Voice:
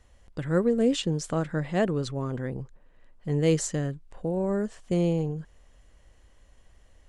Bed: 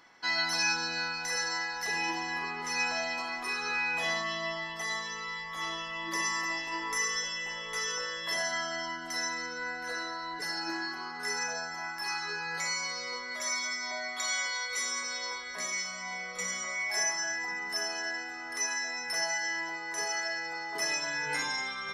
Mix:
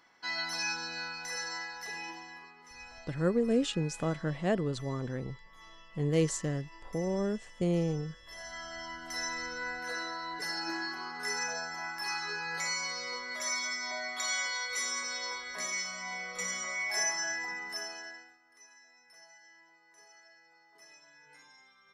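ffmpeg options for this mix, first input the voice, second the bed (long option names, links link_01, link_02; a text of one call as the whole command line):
ffmpeg -i stem1.wav -i stem2.wav -filter_complex "[0:a]adelay=2700,volume=-4.5dB[link_01];[1:a]volume=12.5dB,afade=type=out:start_time=1.57:duration=0.97:silence=0.211349,afade=type=in:start_time=8.26:duration=1.21:silence=0.125893,afade=type=out:start_time=17.31:duration=1.08:silence=0.0595662[link_02];[link_01][link_02]amix=inputs=2:normalize=0" out.wav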